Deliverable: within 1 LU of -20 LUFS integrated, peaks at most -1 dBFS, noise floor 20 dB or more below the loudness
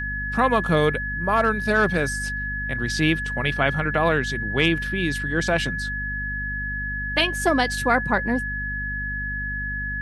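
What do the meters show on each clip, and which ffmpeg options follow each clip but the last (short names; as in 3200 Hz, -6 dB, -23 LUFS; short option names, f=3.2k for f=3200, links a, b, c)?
hum 50 Hz; harmonics up to 250 Hz; hum level -30 dBFS; steady tone 1700 Hz; tone level -27 dBFS; loudness -23.0 LUFS; peak -5.5 dBFS; loudness target -20.0 LUFS
-> -af "bandreject=f=50:t=h:w=6,bandreject=f=100:t=h:w=6,bandreject=f=150:t=h:w=6,bandreject=f=200:t=h:w=6,bandreject=f=250:t=h:w=6"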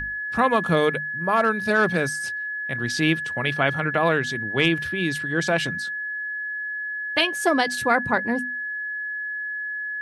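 hum none; steady tone 1700 Hz; tone level -27 dBFS
-> -af "bandreject=f=1.7k:w=30"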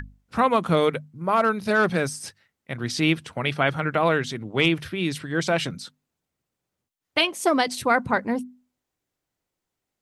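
steady tone none; loudness -23.5 LUFS; peak -6.5 dBFS; loudness target -20.0 LUFS
-> -af "volume=3.5dB"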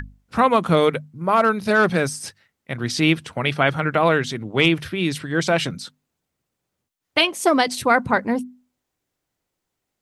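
loudness -20.0 LUFS; peak -3.0 dBFS; noise floor -80 dBFS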